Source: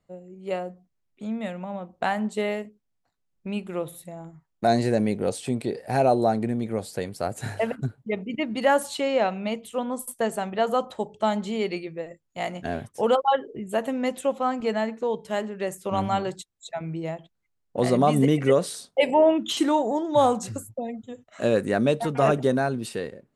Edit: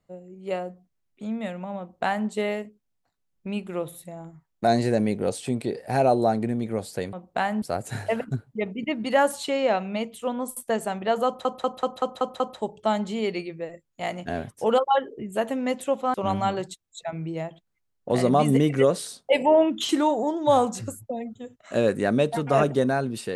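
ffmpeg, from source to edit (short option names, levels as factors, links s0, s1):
-filter_complex "[0:a]asplit=10[s0][s1][s2][s3][s4][s5][s6][s7][s8][s9];[s0]atrim=end=7.132[s10];[s1]atrim=start=1.788:end=2.282[s11];[s2]atrim=start=7.128:end=10.962[s12];[s3]atrim=start=10.768:end=10.962[s13];[s4]atrim=start=10.768:end=10.962[s14];[s5]atrim=start=10.768:end=10.962[s15];[s6]atrim=start=10.768:end=10.962[s16];[s7]atrim=start=10.768:end=10.962[s17];[s8]atrim=start=10.768:end=14.512[s18];[s9]atrim=start=15.818[s19];[s10][s11]acrossfade=d=0.004:c1=hsin:c2=hsin[s20];[s20][s12]acrossfade=d=0.004:c1=hsin:c2=hsin[s21];[s21][s13]acrossfade=d=0.004:c1=hsin:c2=hsin[s22];[s22][s14]acrossfade=d=0.004:c1=hsin:c2=hsin[s23];[s23][s15]acrossfade=d=0.004:c1=hsin:c2=hsin[s24];[s24][s16]acrossfade=d=0.004:c1=hsin:c2=hsin[s25];[s25][s17]acrossfade=d=0.004:c1=hsin:c2=hsin[s26];[s26][s18]acrossfade=d=0.004:c1=hsin:c2=hsin[s27];[s27][s19]acrossfade=d=0.004:c1=hsin:c2=hsin"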